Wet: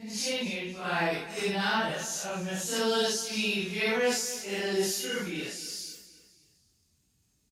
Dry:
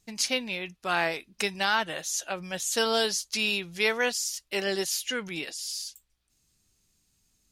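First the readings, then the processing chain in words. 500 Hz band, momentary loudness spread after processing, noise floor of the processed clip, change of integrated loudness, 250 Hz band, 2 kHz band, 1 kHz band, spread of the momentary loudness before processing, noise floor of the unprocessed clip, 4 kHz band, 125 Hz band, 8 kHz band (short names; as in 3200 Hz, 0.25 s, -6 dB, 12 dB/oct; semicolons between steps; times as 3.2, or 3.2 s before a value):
+0.5 dB, 8 LU, -71 dBFS, -1.5 dB, +3.0 dB, -3.0 dB, -2.0 dB, 8 LU, -72 dBFS, -2.5 dB, +4.5 dB, -2.5 dB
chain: phase scrambler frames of 0.2 s; HPF 69 Hz; low shelf 370 Hz +9 dB; transient shaper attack -1 dB, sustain +4 dB; feedback echo 0.259 s, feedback 43%, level -15.5 dB; gain -3.5 dB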